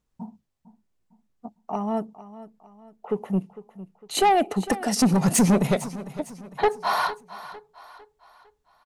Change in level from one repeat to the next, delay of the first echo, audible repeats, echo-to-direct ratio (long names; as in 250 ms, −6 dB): −7.5 dB, 454 ms, 3, −15.0 dB